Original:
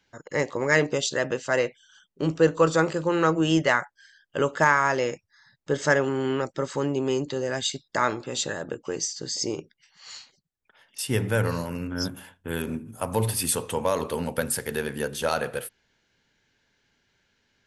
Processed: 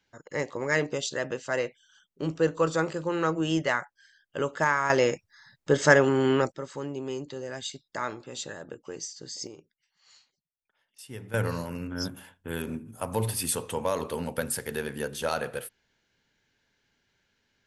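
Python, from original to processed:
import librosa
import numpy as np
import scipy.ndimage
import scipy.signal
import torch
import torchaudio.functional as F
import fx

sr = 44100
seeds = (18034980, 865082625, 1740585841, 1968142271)

y = fx.gain(x, sr, db=fx.steps((0.0, -5.0), (4.9, 3.0), (6.52, -8.5), (9.47, -16.0), (11.34, -3.5)))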